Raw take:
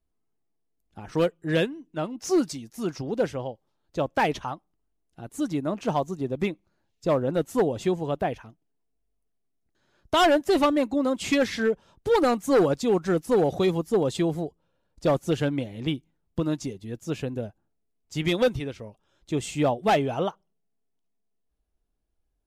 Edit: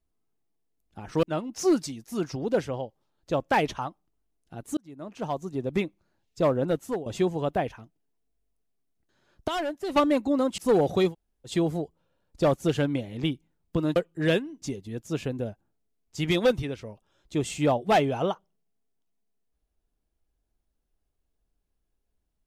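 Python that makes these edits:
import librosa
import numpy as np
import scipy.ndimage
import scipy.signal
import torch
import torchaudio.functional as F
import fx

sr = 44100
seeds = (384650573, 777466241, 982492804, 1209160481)

y = fx.edit(x, sr, fx.move(start_s=1.23, length_s=0.66, to_s=16.59),
    fx.fade_in_span(start_s=5.43, length_s=0.99),
    fx.fade_out_to(start_s=7.32, length_s=0.4, floor_db=-15.0),
    fx.clip_gain(start_s=10.14, length_s=0.48, db=-10.5),
    fx.cut(start_s=11.24, length_s=1.97),
    fx.room_tone_fill(start_s=13.73, length_s=0.39, crossfade_s=0.1), tone=tone)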